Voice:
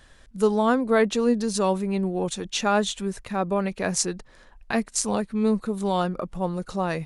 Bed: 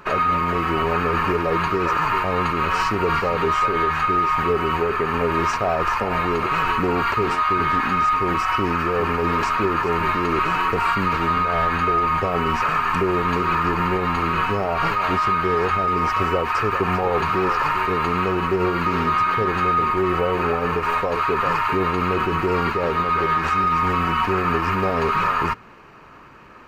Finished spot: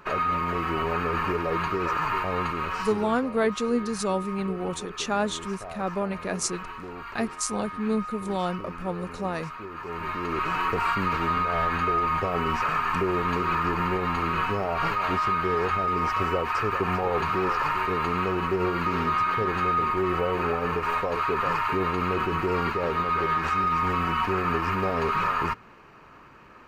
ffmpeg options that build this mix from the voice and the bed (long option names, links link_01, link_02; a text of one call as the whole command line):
ffmpeg -i stem1.wav -i stem2.wav -filter_complex "[0:a]adelay=2450,volume=-4dB[link_01];[1:a]volume=7dB,afade=type=out:start_time=2.38:duration=0.82:silence=0.251189,afade=type=in:start_time=9.72:duration=0.96:silence=0.223872[link_02];[link_01][link_02]amix=inputs=2:normalize=0" out.wav